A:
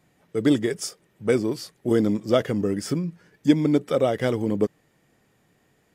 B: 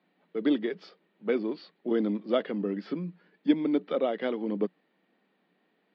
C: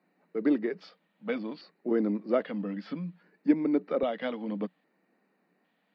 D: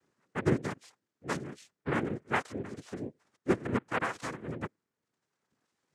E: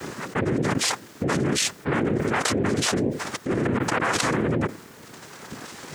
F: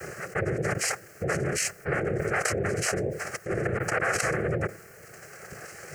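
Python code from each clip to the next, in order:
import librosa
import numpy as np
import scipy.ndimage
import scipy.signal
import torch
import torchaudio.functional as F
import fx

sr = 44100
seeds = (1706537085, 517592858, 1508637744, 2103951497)

y1 = scipy.signal.sosfilt(scipy.signal.cheby1(5, 1.0, [180.0, 4300.0], 'bandpass', fs=sr, output='sos'), x)
y1 = F.gain(torch.from_numpy(y1), -5.5).numpy()
y2 = fx.filter_lfo_notch(y1, sr, shape='square', hz=0.62, low_hz=380.0, high_hz=3300.0, q=1.7)
y3 = fx.comb_fb(y2, sr, f0_hz=280.0, decay_s=0.87, harmonics='all', damping=0.0, mix_pct=30)
y3 = fx.dereverb_blind(y3, sr, rt60_s=1.2)
y3 = fx.noise_vocoder(y3, sr, seeds[0], bands=3)
y4 = 10.0 ** (-18.0 / 20.0) * np.tanh(y3 / 10.0 ** (-18.0 / 20.0))
y4 = fx.env_flatten(y4, sr, amount_pct=100)
y4 = F.gain(torch.from_numpy(y4), 1.0).numpy()
y5 = fx.fixed_phaser(y4, sr, hz=970.0, stages=6)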